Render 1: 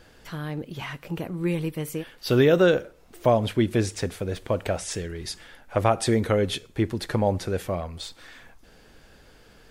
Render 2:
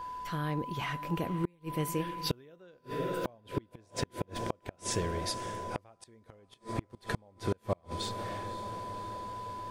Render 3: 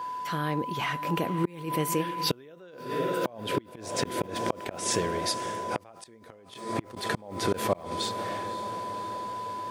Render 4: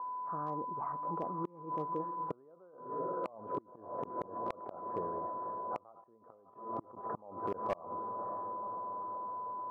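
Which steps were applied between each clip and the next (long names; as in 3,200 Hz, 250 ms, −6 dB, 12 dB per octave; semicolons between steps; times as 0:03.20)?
steady tone 1,000 Hz −36 dBFS; feedback delay with all-pass diffusion 553 ms, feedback 68%, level −15 dB; gate with flip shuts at −17 dBFS, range −35 dB; level −2 dB
Bessel high-pass filter 190 Hz, order 2; background raised ahead of every attack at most 86 dB per second; level +6 dB
Chebyshev low-pass filter 1,200 Hz, order 5; spectral tilt +4 dB per octave; hard clipping −23 dBFS, distortion −21 dB; level −4 dB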